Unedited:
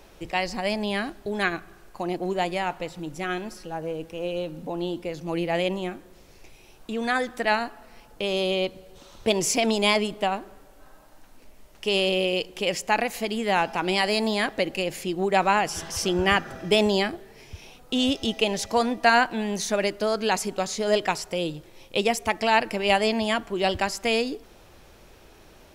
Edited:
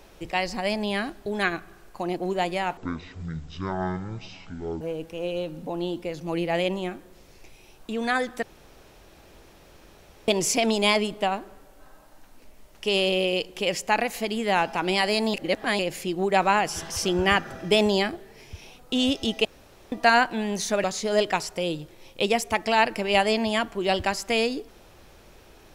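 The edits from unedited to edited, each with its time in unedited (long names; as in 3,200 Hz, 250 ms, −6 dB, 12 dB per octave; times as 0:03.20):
0:02.77–0:03.81: play speed 51%
0:07.43–0:09.28: fill with room tone
0:14.34–0:14.79: reverse
0:18.45–0:18.92: fill with room tone
0:19.84–0:20.59: remove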